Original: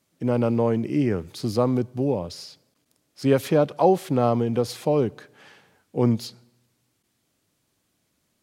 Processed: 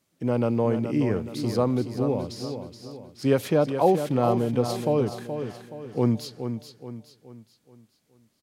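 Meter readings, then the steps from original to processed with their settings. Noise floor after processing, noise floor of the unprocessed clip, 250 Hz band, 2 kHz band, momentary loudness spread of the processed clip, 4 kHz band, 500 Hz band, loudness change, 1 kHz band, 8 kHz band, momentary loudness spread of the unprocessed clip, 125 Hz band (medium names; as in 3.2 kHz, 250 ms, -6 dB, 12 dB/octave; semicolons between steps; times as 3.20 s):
-70 dBFS, -72 dBFS, -1.5 dB, -1.5 dB, 18 LU, -1.5 dB, -1.5 dB, -2.0 dB, -1.5 dB, -1.5 dB, 9 LU, -1.0 dB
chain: feedback delay 424 ms, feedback 42%, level -8.5 dB; trim -2 dB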